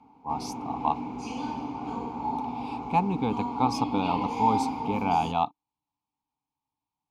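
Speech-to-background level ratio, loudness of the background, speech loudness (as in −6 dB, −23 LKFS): 3.5 dB, −33.0 LKFS, −29.5 LKFS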